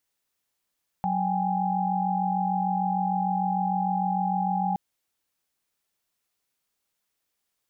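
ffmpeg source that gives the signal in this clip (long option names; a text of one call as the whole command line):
ffmpeg -f lavfi -i "aevalsrc='0.0422*(sin(2*PI*185*t)+sin(2*PI*783.99*t)+sin(2*PI*830.61*t))':duration=3.72:sample_rate=44100" out.wav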